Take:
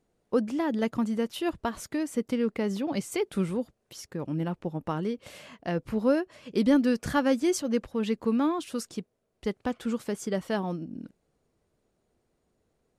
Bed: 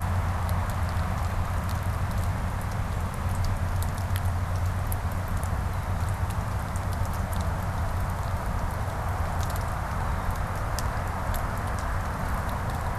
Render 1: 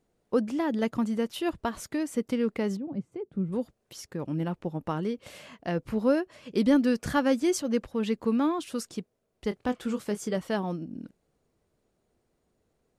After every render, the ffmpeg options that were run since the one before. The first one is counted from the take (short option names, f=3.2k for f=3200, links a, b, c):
-filter_complex "[0:a]asplit=3[a][b][c];[a]afade=t=out:st=2.75:d=0.02[d];[b]bandpass=f=140:t=q:w=0.89,afade=t=in:st=2.75:d=0.02,afade=t=out:st=3.52:d=0.02[e];[c]afade=t=in:st=3.52:d=0.02[f];[d][e][f]amix=inputs=3:normalize=0,asettb=1/sr,asplit=3[g][h][i];[g]atrim=end=9.494[j];[h]atrim=start=9.49:end=10.37,asetpts=PTS-STARTPTS,afade=t=in:d=0.004:c=qsin,afade=t=out:st=0.876:d=0.004:c=qsin,asplit=2[k][l];[l]adelay=24,volume=-10dB[m];[k][m]amix=inputs=2:normalize=0,atrim=end_sample=38808[n];[i]atrim=start=10.366[o];[j][n]acrossfade=d=0.004:c1=hsin:c2=qsin[p];[p][o]acrossfade=d=0.004:c1=qsin:c2=hsin"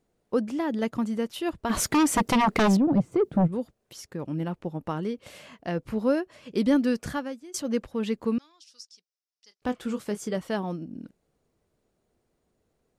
-filter_complex "[0:a]asplit=3[a][b][c];[a]afade=t=out:st=1.69:d=0.02[d];[b]aeval=exprs='0.15*sin(PI/2*3.55*val(0)/0.15)':c=same,afade=t=in:st=1.69:d=0.02,afade=t=out:st=3.46:d=0.02[e];[c]afade=t=in:st=3.46:d=0.02[f];[d][e][f]amix=inputs=3:normalize=0,asettb=1/sr,asplit=3[g][h][i];[g]atrim=end=8.384[j];[h]atrim=start=8.38:end=9.62,asetpts=PTS-STARTPTS,afade=t=in:d=0.004:c=qsin,afade=t=out:st=1.236:d=0.004:c=qsin,bandpass=f=5.3k:t=q:w=4.9[k];[i]atrim=start=9.616[l];[j][k]acrossfade=d=0.004:c1=hsin:c2=qsin[m];[m][l]acrossfade=d=0.004:c1=qsin:c2=hsin,asplit=2[n][o];[n]atrim=end=7.54,asetpts=PTS-STARTPTS,afade=t=out:st=7.02:d=0.52:c=qua:silence=0.0794328[p];[o]atrim=start=7.54,asetpts=PTS-STARTPTS,afade=t=in:d=0.004:c=hsin:silence=0.0794328[q];[p][q]concat=n=2:v=0:a=1"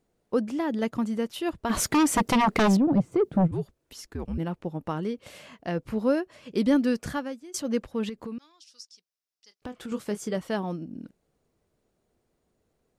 -filter_complex "[0:a]asettb=1/sr,asplit=3[a][b][c];[a]atrim=end=3.514[d];[b]atrim=start=3.51:end=4.38,asetpts=PTS-STARTPTS,afade=t=in:d=0.004:c=qsin,afade=t=out:st=0.866:d=0.004:c=qsin,afreqshift=-86[e];[c]atrim=start=4.376[f];[d][e]acrossfade=d=0.004:c1=hsin:c2=qsin[g];[g][f]acrossfade=d=0.004:c1=qsin:c2=hsin,asettb=1/sr,asplit=3[h][i][j];[h]atrim=end=8.094[k];[i]atrim=start=8.09:end=9.92,asetpts=PTS-STARTPTS,afade=t=in:d=0.004:c=qsin,afade=t=out:st=1.826:d=0.004:c=qsin,acompressor=threshold=-33dB:ratio=6:attack=3.2:release=140:knee=1:detection=peak[l];[j]atrim=start=9.916[m];[k][l]acrossfade=d=0.004:c1=hsin:c2=qsin[n];[n][m]acrossfade=d=0.004:c1=qsin:c2=hsin"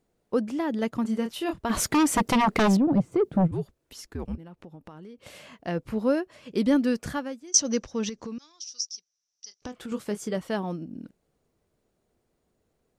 -filter_complex "[0:a]asettb=1/sr,asplit=3[a][b][c];[a]atrim=end=1.024[d];[b]atrim=start=1.02:end=1.62,asetpts=PTS-STARTPTS,afade=t=in:d=0.004:c=qsin,afade=t=out:st=0.596:d=0.004:c=qsin,asplit=2[e][f];[f]adelay=27,volume=-6dB[g];[e][g]amix=inputs=2:normalize=0,atrim=end_sample=26460[h];[c]atrim=start=1.616[i];[d][h]acrossfade=d=0.004:c1=hsin:c2=qsin[j];[j][i]acrossfade=d=0.004:c1=qsin:c2=hsin,asettb=1/sr,asplit=3[k][l][m];[k]atrim=end=4.354[n];[l]atrim=start=4.35:end=5.25,asetpts=PTS-STARTPTS,afade=t=in:d=0.004:c=qsin,afade=t=out:st=0.896:d=0.004:c=qsin,acompressor=threshold=-42dB:ratio=6:attack=3.2:release=140:knee=1:detection=peak[o];[m]atrim=start=5.246[p];[n][o]acrossfade=d=0.004:c1=hsin:c2=qsin[q];[q][p]acrossfade=d=0.004:c1=qsin:c2=hsin,asettb=1/sr,asplit=3[r][s][t];[r]atrim=end=7.474[u];[s]atrim=start=7.47:end=9.72,asetpts=PTS-STARTPTS,afade=t=in:d=0.004:c=qsin,afade=t=out:st=2.246:d=0.004:c=qsin,lowpass=f=5.9k:t=q:w=12[v];[t]atrim=start=9.716[w];[u][v]acrossfade=d=0.004:c1=hsin:c2=qsin[x];[x][w]acrossfade=d=0.004:c1=qsin:c2=hsin"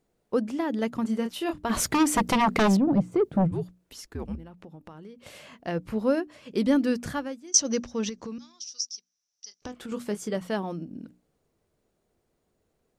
-af "bandreject=f=60:t=h:w=6,bandreject=f=120:t=h:w=6,bandreject=f=180:t=h:w=6,bandreject=f=240:t=h:w=6,bandreject=f=300:t=h:w=6"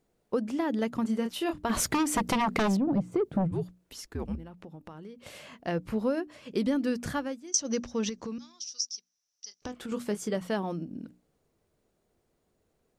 -af "acompressor=threshold=-24dB:ratio=5"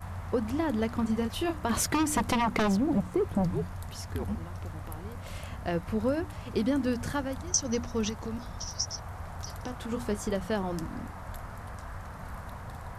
-filter_complex "[1:a]volume=-12dB[a];[0:a][a]amix=inputs=2:normalize=0"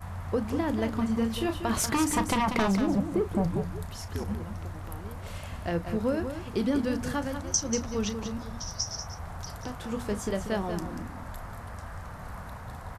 -filter_complex "[0:a]asplit=2[a][b];[b]adelay=35,volume=-13dB[c];[a][c]amix=inputs=2:normalize=0,aecho=1:1:189:0.376"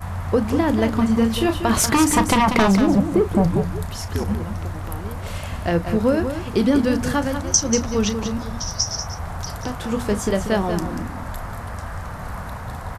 -af "volume=9.5dB"